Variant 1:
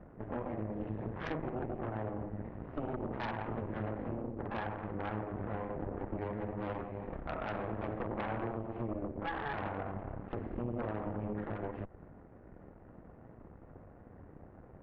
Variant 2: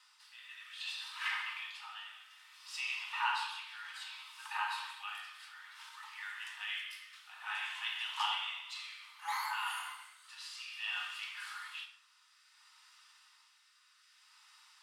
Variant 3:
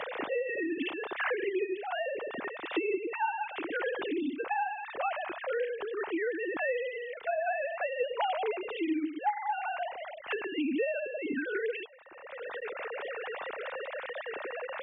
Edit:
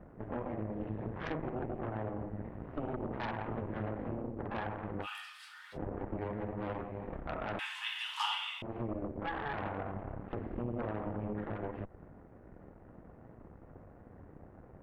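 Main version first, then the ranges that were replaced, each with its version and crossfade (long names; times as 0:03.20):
1
0:05.04–0:05.75: punch in from 2, crossfade 0.06 s
0:07.59–0:08.62: punch in from 2
not used: 3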